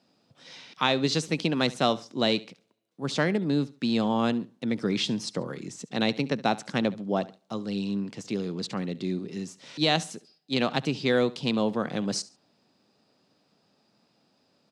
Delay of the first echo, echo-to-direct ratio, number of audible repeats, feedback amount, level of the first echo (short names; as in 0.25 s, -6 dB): 70 ms, -19.0 dB, 2, 28%, -19.5 dB